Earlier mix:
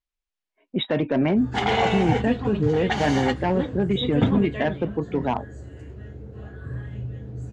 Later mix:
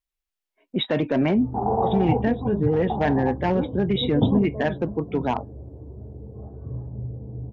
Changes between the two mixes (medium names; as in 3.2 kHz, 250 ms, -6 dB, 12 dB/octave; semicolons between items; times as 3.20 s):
background: add steep low-pass 1 kHz 48 dB/octave; master: remove distance through air 58 m